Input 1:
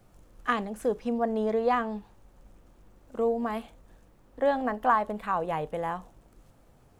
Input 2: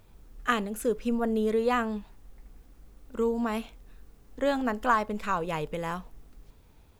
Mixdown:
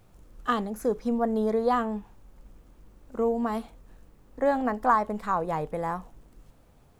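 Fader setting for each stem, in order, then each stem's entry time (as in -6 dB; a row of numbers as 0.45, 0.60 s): -1.0, -6.5 dB; 0.00, 0.00 s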